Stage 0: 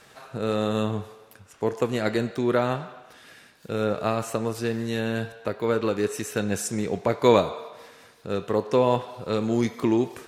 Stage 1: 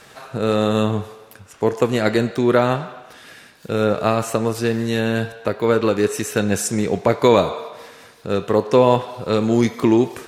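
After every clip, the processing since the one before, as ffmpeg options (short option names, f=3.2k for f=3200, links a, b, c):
-af "alimiter=level_in=8dB:limit=-1dB:release=50:level=0:latency=1,volume=-1dB"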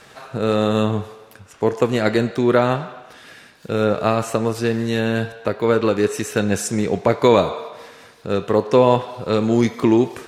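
-af "highshelf=f=10k:g=-7"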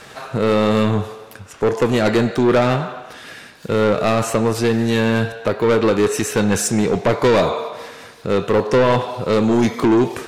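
-af "asoftclip=type=tanh:threshold=-16dB,volume=6dB"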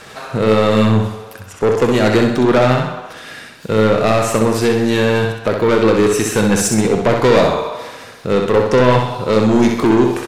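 -af "aecho=1:1:64|128|192|256|320:0.562|0.247|0.109|0.0479|0.0211,volume=2dB"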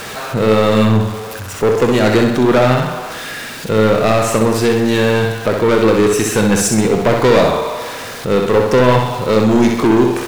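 -af "aeval=exprs='val(0)+0.5*0.0562*sgn(val(0))':c=same"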